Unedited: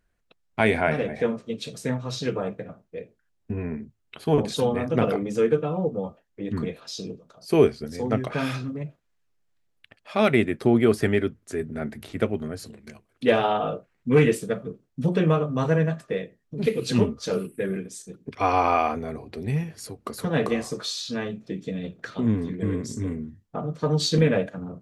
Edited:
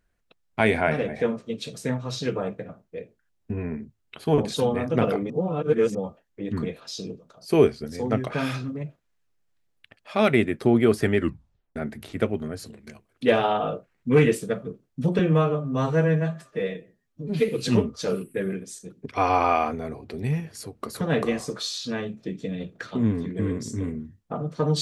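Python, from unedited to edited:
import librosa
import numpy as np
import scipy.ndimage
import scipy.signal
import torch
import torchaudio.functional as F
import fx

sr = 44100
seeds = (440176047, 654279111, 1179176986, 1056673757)

y = fx.edit(x, sr, fx.reverse_span(start_s=5.3, length_s=0.65),
    fx.tape_stop(start_s=11.17, length_s=0.59),
    fx.stretch_span(start_s=15.19, length_s=1.53, factor=1.5), tone=tone)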